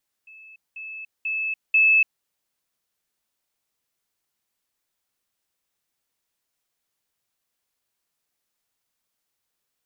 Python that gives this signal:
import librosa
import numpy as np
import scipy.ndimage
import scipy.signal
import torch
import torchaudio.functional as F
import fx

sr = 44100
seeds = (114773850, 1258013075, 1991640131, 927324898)

y = fx.level_ladder(sr, hz=2610.0, from_db=-43.5, step_db=10.0, steps=4, dwell_s=0.29, gap_s=0.2)